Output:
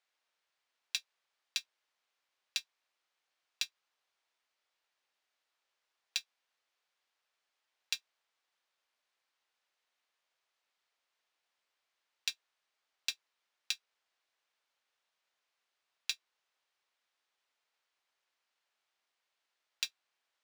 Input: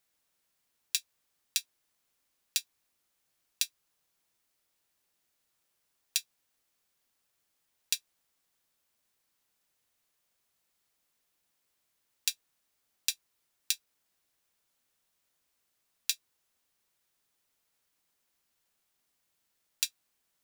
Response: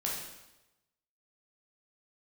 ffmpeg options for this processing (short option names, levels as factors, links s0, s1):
-af "highpass=590,lowpass=4200,acrusher=bits=3:mode=log:mix=0:aa=0.000001"